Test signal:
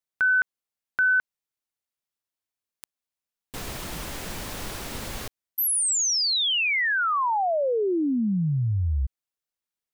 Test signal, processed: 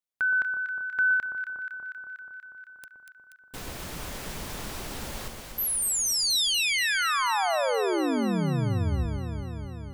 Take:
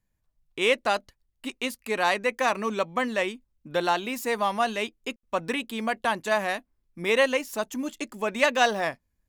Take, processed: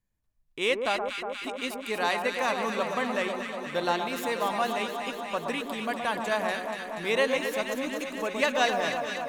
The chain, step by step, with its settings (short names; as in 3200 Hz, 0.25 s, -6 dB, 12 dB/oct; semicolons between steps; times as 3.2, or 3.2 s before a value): dynamic EQ 3900 Hz, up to +3 dB, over -42 dBFS, Q 3.9; on a send: echo with dull and thin repeats by turns 0.12 s, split 1300 Hz, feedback 86%, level -5 dB; on the sum: gain -4 dB